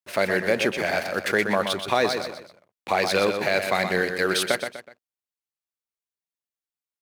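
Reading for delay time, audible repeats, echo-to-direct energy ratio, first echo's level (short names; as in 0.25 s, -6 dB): 0.124 s, 3, -6.5 dB, -7.0 dB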